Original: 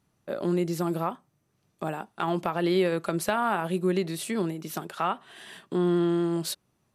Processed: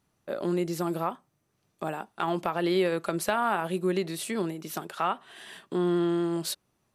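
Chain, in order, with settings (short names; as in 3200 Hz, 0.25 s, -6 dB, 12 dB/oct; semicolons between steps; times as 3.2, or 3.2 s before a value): bell 140 Hz -4 dB 1.9 oct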